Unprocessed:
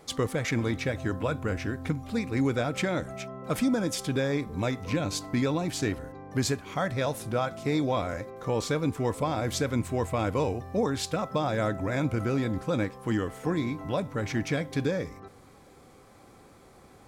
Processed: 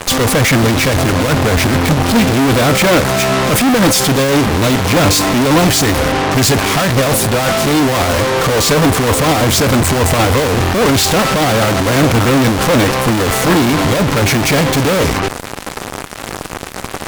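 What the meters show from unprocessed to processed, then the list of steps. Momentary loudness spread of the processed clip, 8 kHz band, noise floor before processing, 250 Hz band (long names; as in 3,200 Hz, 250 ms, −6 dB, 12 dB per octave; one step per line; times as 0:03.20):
4 LU, +23.0 dB, −54 dBFS, +16.0 dB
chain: fuzz pedal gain 45 dB, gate −52 dBFS
harmonic generator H 6 −10 dB, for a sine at −10 dBFS
level +3 dB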